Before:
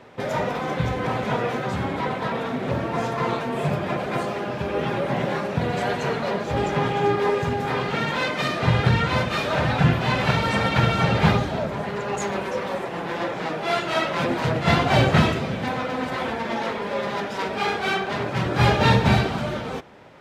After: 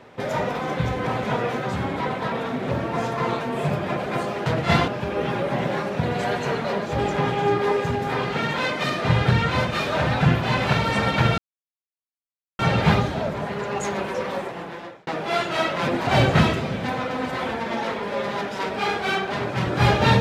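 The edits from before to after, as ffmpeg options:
-filter_complex "[0:a]asplit=6[s0][s1][s2][s3][s4][s5];[s0]atrim=end=4.462[s6];[s1]atrim=start=14.438:end=14.862[s7];[s2]atrim=start=4.458:end=10.96,asetpts=PTS-STARTPTS,afade=t=out:st=6.498:d=0.004:c=hsin,apad=pad_dur=1.21[s8];[s3]atrim=start=10.96:end=13.44,asetpts=PTS-STARTPTS,afade=t=in:d=0.004:c=hsin,afade=t=out:st=1.76:d=0.72[s9];[s4]atrim=start=13.44:end=14.442,asetpts=PTS-STARTPTS,afade=t=in:d=0.004:c=hsin[s10];[s5]atrim=start=14.858[s11];[s6][s7]acrossfade=d=0.004:c1=hsin:c2=hsin[s12];[s8][s9][s10]concat=n=3:v=0:a=1[s13];[s12][s13]acrossfade=d=0.004:c1=hsin:c2=hsin[s14];[s14][s11]acrossfade=d=0.004:c1=hsin:c2=hsin"

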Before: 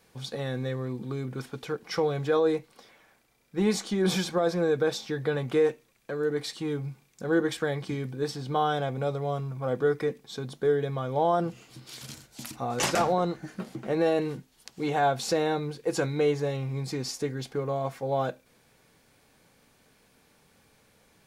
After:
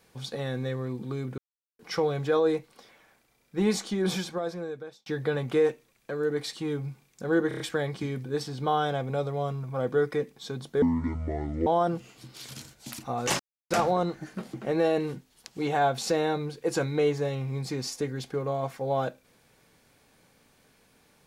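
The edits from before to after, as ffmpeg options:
-filter_complex "[0:a]asplit=11[s0][s1][s2][s3][s4][s5][s6][s7][s8][s9][s10];[s0]atrim=end=1.38,asetpts=PTS-STARTPTS,afade=t=out:st=1.376:d=0.004:c=hsin[s11];[s1]atrim=start=1.38:end=1.79,asetpts=PTS-STARTPTS,volume=0[s12];[s2]atrim=start=1.79:end=5.06,asetpts=PTS-STARTPTS,afade=t=in:d=0.004:c=hsin,afade=t=out:st=1.98:d=1.29[s13];[s3]atrim=start=5.06:end=7.512,asetpts=PTS-STARTPTS,afade=t=in:d=0.004:c=hsin[s14];[s4]atrim=start=7.478:end=7.512[s15];[s5]atrim=start=7.478:end=7.512[s16];[s6]atrim=start=7.478:end=7.512[s17];[s7]atrim=start=7.478:end=10.704[s18];[s8]atrim=start=10.7:end=11.19,asetpts=PTS-STARTPTS,asetrate=25578,aresample=44100[s19];[s9]atrim=start=11.186:end=12.92,asetpts=PTS-STARTPTS,afade=t=out:st=1.73:d=0.004:c=hsin,apad=pad_dur=0.31[s20];[s10]atrim=start=12.92,asetpts=PTS-STARTPTS,afade=t=in:d=0.004:c=hsin[s21];[s11][s12][s13][s14]concat=n=4:v=0:a=1[s22];[s22][s15]acrossfade=d=0.004:c1=hsin:c2=hsin[s23];[s23][s16]acrossfade=d=0.004:c1=hsin:c2=hsin[s24];[s24][s17]acrossfade=d=0.004:c1=hsin:c2=hsin[s25];[s25][s18]acrossfade=d=0.004:c1=hsin:c2=hsin[s26];[s26][s19]acrossfade=d=0.004:c1=hsin:c2=hsin[s27];[s20][s21]concat=n=2:v=0:a=1[s28];[s27][s28]acrossfade=d=0.004:c1=hsin:c2=hsin"

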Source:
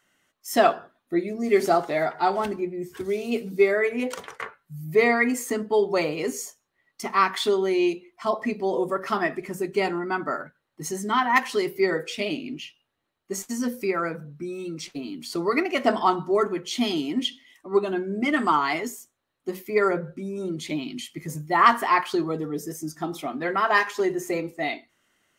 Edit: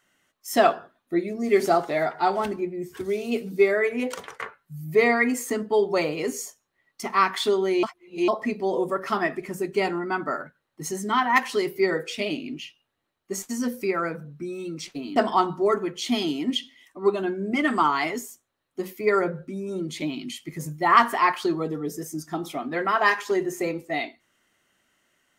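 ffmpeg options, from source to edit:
-filter_complex "[0:a]asplit=4[s0][s1][s2][s3];[s0]atrim=end=7.832[s4];[s1]atrim=start=7.828:end=8.282,asetpts=PTS-STARTPTS,areverse[s5];[s2]atrim=start=8.278:end=15.162[s6];[s3]atrim=start=15.848[s7];[s4][s5]acrossfade=d=0.004:c1=hsin:c2=hsin[s8];[s8][s6]acrossfade=d=0.004:c1=hsin:c2=hsin[s9];[s9][s7]acrossfade=d=0.004:c1=hsin:c2=hsin"

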